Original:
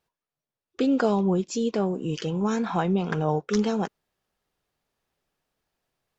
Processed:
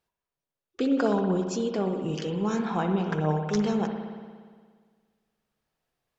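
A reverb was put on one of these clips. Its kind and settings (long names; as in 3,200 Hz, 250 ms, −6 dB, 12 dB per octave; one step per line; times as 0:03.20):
spring reverb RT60 1.7 s, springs 58 ms, chirp 60 ms, DRR 4.5 dB
level −3 dB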